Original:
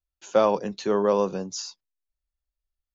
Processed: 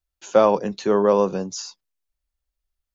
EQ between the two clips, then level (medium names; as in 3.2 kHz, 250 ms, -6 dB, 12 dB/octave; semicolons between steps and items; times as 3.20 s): dynamic bell 4.3 kHz, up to -4 dB, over -42 dBFS, Q 0.79; +4.5 dB